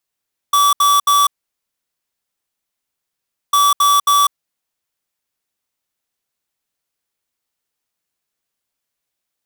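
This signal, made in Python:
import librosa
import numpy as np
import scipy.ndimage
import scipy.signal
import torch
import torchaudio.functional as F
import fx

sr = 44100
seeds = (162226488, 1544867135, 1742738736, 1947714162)

y = fx.beep_pattern(sr, wave='square', hz=1150.0, on_s=0.2, off_s=0.07, beeps=3, pause_s=2.26, groups=2, level_db=-12.0)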